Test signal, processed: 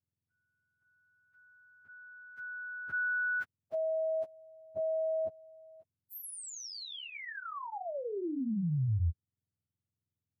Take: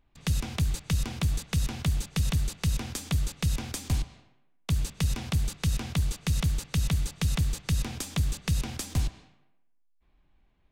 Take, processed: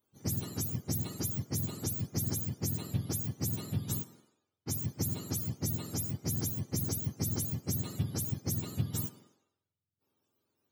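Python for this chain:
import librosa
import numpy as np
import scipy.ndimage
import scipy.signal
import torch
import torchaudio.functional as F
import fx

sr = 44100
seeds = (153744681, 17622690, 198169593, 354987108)

y = fx.octave_mirror(x, sr, pivot_hz=970.0)
y = y * librosa.db_to_amplitude(-4.5)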